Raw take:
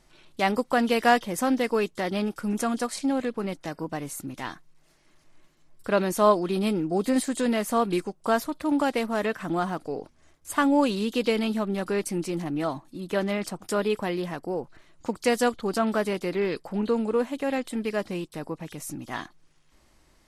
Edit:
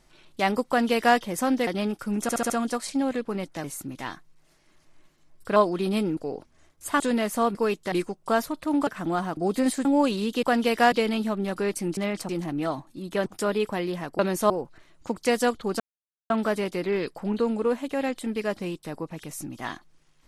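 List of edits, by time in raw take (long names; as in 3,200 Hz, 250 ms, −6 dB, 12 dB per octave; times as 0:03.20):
0:00.68–0:01.17: duplicate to 0:11.22
0:01.67–0:02.04: move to 0:07.90
0:02.59: stutter 0.07 s, 5 plays
0:03.73–0:04.03: remove
0:05.95–0:06.26: move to 0:14.49
0:06.87–0:07.35: swap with 0:09.81–0:10.64
0:08.85–0:09.31: remove
0:13.24–0:13.56: move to 0:12.27
0:15.79: splice in silence 0.50 s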